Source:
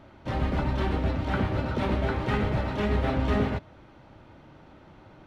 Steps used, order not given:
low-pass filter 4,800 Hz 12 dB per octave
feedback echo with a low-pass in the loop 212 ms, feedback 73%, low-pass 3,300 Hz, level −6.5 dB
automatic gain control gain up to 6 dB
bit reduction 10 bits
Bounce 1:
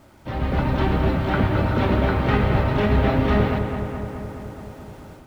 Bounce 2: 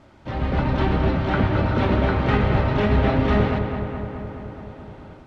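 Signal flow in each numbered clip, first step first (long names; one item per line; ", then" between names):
low-pass filter, then bit reduction, then feedback echo with a low-pass in the loop, then automatic gain control
feedback echo with a low-pass in the loop, then automatic gain control, then bit reduction, then low-pass filter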